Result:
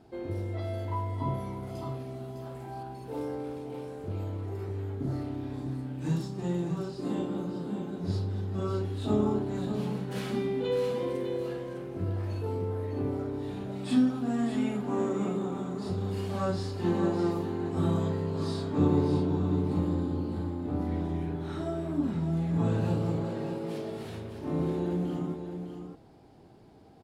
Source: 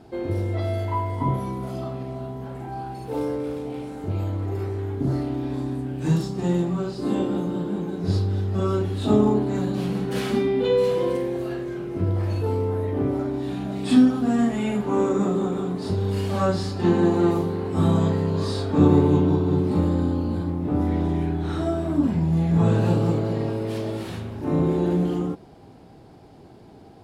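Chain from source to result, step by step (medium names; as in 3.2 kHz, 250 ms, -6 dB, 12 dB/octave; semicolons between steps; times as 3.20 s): 1.75–2.83 s: treble shelf 3.9 kHz +8.5 dB; delay 605 ms -8 dB; trim -8.5 dB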